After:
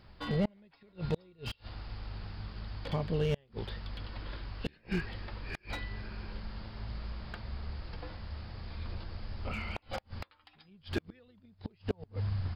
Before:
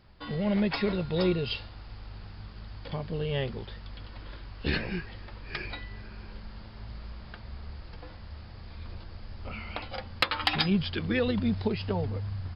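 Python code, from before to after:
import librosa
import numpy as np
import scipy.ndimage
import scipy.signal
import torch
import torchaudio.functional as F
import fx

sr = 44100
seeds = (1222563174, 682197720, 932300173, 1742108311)

y = fx.gate_flip(x, sr, shuts_db=-21.0, range_db=-35)
y = fx.slew_limit(y, sr, full_power_hz=30.0)
y = F.gain(torch.from_numpy(y), 1.5).numpy()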